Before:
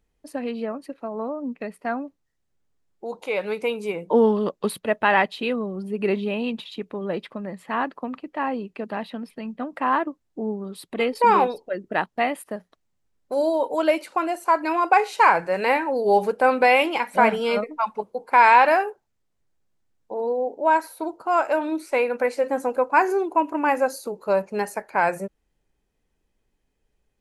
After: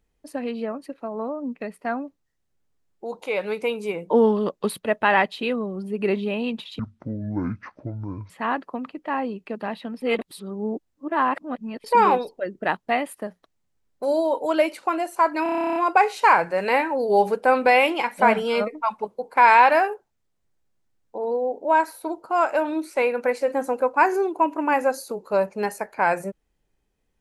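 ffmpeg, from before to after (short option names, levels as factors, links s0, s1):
-filter_complex "[0:a]asplit=16[s0][s1][s2][s3][s4][s5][s6][s7][s8][s9][s10][s11][s12][s13][s14][s15];[s0]atrim=end=6.794[s16];[s1]atrim=start=6.79:end=7.59,asetpts=PTS-STARTPTS,asetrate=23373,aresample=44100,atrim=end_sample=66566,asetpts=PTS-STARTPTS[s17];[s2]atrim=start=7.586:end=9.312[s18];[s3]atrim=start=9.308:end=11.132,asetpts=PTS-STARTPTS,areverse[s19];[s4]atrim=start=11.128:end=14.752[s20];[s5]atrim=start=14.718:end=14.752[s21];[s6]atrim=start=14.718:end=14.752[s22];[s7]atrim=start=14.718:end=14.752[s23];[s8]atrim=start=14.718:end=14.752[s24];[s9]atrim=start=14.718:end=14.752[s25];[s10]atrim=start=14.718:end=14.752[s26];[s11]atrim=start=14.718:end=14.752[s27];[s12]atrim=start=14.718:end=14.752[s28];[s13]atrim=start=14.718:end=14.752[s29];[s14]atrim=start=14.718:end=14.752[s30];[s15]atrim=start=14.718[s31];[s16][s17]acrossfade=d=0.004:c1=hsin:c2=hsin[s32];[s32][s18]acrossfade=d=0.004:c1=hsin:c2=hsin[s33];[s33][s19]acrossfade=d=0.004:c1=hsin:c2=hsin[s34];[s34][s20]acrossfade=d=0.004:c1=hsin:c2=hsin[s35];[s35][s21]acrossfade=d=0.004:c1=hsin:c2=hsin[s36];[s36][s22]acrossfade=d=0.004:c1=hsin:c2=hsin[s37];[s37][s23]acrossfade=d=0.004:c1=hsin:c2=hsin[s38];[s38][s24]acrossfade=d=0.004:c1=hsin:c2=hsin[s39];[s39][s25]acrossfade=d=0.004:c1=hsin:c2=hsin[s40];[s40][s26]acrossfade=d=0.004:c1=hsin:c2=hsin[s41];[s41][s27]acrossfade=d=0.004:c1=hsin:c2=hsin[s42];[s42][s28]acrossfade=d=0.004:c1=hsin:c2=hsin[s43];[s43][s29]acrossfade=d=0.004:c1=hsin:c2=hsin[s44];[s44][s30]acrossfade=d=0.004:c1=hsin:c2=hsin[s45];[s45][s31]acrossfade=d=0.004:c1=hsin:c2=hsin"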